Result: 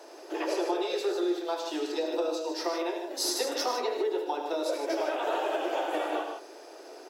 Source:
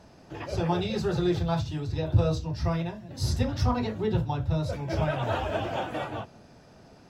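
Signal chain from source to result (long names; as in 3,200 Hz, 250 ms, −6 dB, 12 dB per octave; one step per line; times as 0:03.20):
Butterworth high-pass 320 Hz 72 dB per octave
low-shelf EQ 420 Hz +10.5 dB
downward compressor 6 to 1, threshold −32 dBFS, peak gain reduction 14.5 dB
high-shelf EQ 7,000 Hz +10 dB
on a send: loudspeakers that aren't time-aligned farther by 26 metres −10 dB, 37 metres −9 dB, 52 metres −8 dB
on the sum: level +4 dB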